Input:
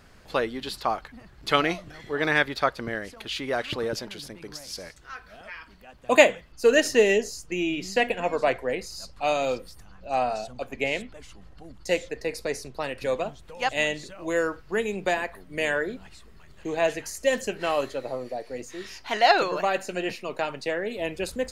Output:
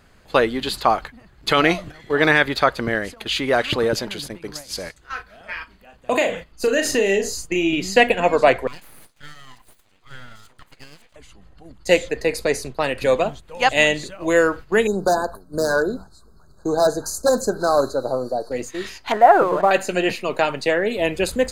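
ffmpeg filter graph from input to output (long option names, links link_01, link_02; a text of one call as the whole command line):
ffmpeg -i in.wav -filter_complex "[0:a]asettb=1/sr,asplit=3[link_01][link_02][link_03];[link_01]atrim=end=4.994[link_04];[link_02]atrim=start=4.99:end=7.73,asetpts=PTS-STARTPTS,afade=type=in:duration=0.004:curve=qsin,afade=type=out:start_time=2.736:duration=0.004:curve=qsin,acompressor=threshold=-26dB:ratio=4:attack=3.2:release=140:knee=1:detection=peak,asplit=2[link_05][link_06];[link_06]adelay=36,volume=-7dB[link_07];[link_05][link_07]amix=inputs=2:normalize=0,atrim=end_sample=120834[link_08];[link_03]atrim=start=7.726[link_09];[link_04][link_08]acrossfade=duration=0.004:curve1=hsin:curve2=qsin[link_10];[link_10][link_09]acrossfade=duration=0.004:curve1=qsin:curve2=hsin,asettb=1/sr,asplit=3[link_11][link_12][link_13];[link_11]atrim=end=8.674[link_14];[link_12]atrim=start=8.67:end=11.16,asetpts=PTS-STARTPTS,afade=type=in:duration=0.004:curve=qsin,afade=type=out:start_time=2.486:duration=0.004:curve=qsin,highpass=frequency=900:poles=1,acompressor=threshold=-39dB:ratio=8:attack=3.2:release=140:knee=1:detection=peak,aeval=exprs='abs(val(0))':channel_layout=same[link_15];[link_13]atrim=start=11.156[link_16];[link_14][link_15]acrossfade=duration=0.004:curve1=hsin:curve2=qsin[link_17];[link_17][link_16]acrossfade=duration=0.004:curve1=qsin:curve2=hsin,asettb=1/sr,asplit=3[link_18][link_19][link_20];[link_18]atrim=end=14.874[link_21];[link_19]atrim=start=14.87:end=18.52,asetpts=PTS-STARTPTS,afade=type=in:duration=0.004:curve=qsin,afade=type=out:start_time=3.646:duration=0.004:curve=qsin,aeval=exprs='0.126*(abs(mod(val(0)/0.126+3,4)-2)-1)':channel_layout=same,asuperstop=centerf=2500:order=20:qfactor=1.1[link_22];[link_20]atrim=start=18.516[link_23];[link_21][link_22]acrossfade=duration=0.004:curve1=hsin:curve2=qsin[link_24];[link_24][link_23]acrossfade=duration=0.004:curve1=qsin:curve2=hsin,asettb=1/sr,asplit=3[link_25][link_26][link_27];[link_25]atrim=end=19.124[link_28];[link_26]atrim=start=19.12:end=19.71,asetpts=PTS-STARTPTS,afade=type=in:duration=0.004:curve=qsin,afade=type=out:start_time=0.586:duration=0.004:curve=qsin,lowpass=frequency=1400:width=0.5412,lowpass=frequency=1400:width=1.3066,aeval=exprs='sgn(val(0))*max(abs(val(0))-0.00422,0)':channel_layout=same[link_29];[link_27]atrim=start=19.706[link_30];[link_28][link_29]acrossfade=duration=0.004:curve1=hsin:curve2=qsin[link_31];[link_31][link_30]acrossfade=duration=0.004:curve1=qsin:curve2=hsin,bandreject=frequency=5500:width=7.3,agate=range=-9dB:threshold=-41dB:ratio=16:detection=peak,alimiter=level_in=10dB:limit=-1dB:release=50:level=0:latency=1,volume=-1dB" out.wav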